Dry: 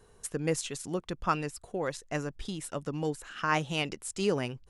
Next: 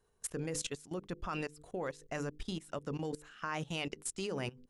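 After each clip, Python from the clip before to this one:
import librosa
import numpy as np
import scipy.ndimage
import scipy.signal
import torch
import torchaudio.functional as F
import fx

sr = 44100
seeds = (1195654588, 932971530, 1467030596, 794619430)

y = fx.hum_notches(x, sr, base_hz=50, count=10)
y = fx.level_steps(y, sr, step_db=19)
y = y * 10.0 ** (1.0 / 20.0)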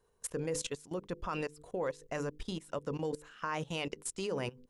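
y = fx.small_body(x, sr, hz=(500.0, 980.0), ring_ms=20, db=6)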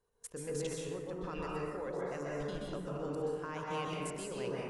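y = fx.rev_plate(x, sr, seeds[0], rt60_s=2.2, hf_ratio=0.3, predelay_ms=115, drr_db=-5.0)
y = y * 10.0 ** (-8.0 / 20.0)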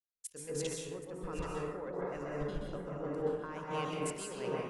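y = x + 10.0 ** (-8.5 / 20.0) * np.pad(x, (int(779 * sr / 1000.0), 0))[:len(x)]
y = fx.band_widen(y, sr, depth_pct=100)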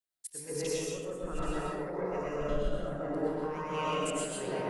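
y = fx.spec_ripple(x, sr, per_octave=0.82, drift_hz=0.69, depth_db=6)
y = fx.rev_freeverb(y, sr, rt60_s=0.46, hf_ratio=0.45, predelay_ms=70, drr_db=-2.5)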